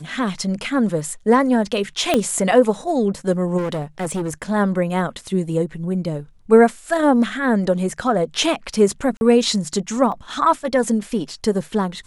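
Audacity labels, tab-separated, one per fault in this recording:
2.140000	2.140000	pop -3 dBFS
3.570000	4.330000	clipped -20 dBFS
9.170000	9.210000	gap 41 ms
10.120000	10.120000	gap 2.4 ms

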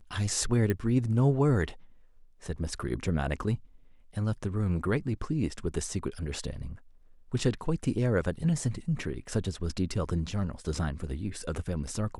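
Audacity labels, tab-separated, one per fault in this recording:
0.700000	0.700000	pop -17 dBFS

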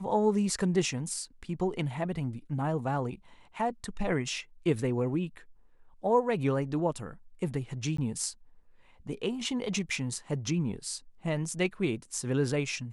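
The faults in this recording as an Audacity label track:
7.970000	7.980000	gap 14 ms

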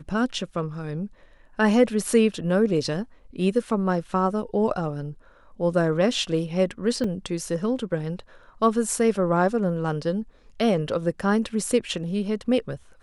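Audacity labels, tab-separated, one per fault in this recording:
7.040000	7.040000	gap 2.2 ms

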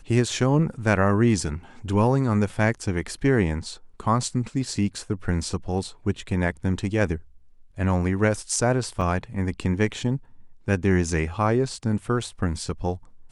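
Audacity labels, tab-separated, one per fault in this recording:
9.010000	9.020000	gap 5.3 ms

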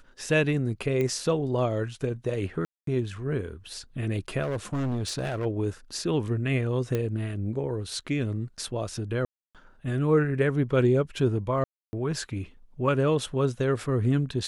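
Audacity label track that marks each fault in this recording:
1.010000	1.010000	pop -18 dBFS
2.650000	2.870000	gap 0.223 s
4.420000	5.460000	clipped -25 dBFS
6.950000	6.950000	pop -15 dBFS
9.250000	9.550000	gap 0.297 s
11.640000	11.930000	gap 0.29 s

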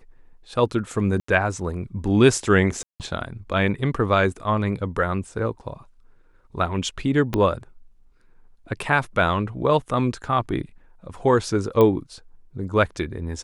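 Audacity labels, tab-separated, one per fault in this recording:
1.200000	1.280000	gap 84 ms
2.830000	3.000000	gap 0.168 s
7.340000	7.340000	pop -10 dBFS
11.810000	11.810000	pop -9 dBFS

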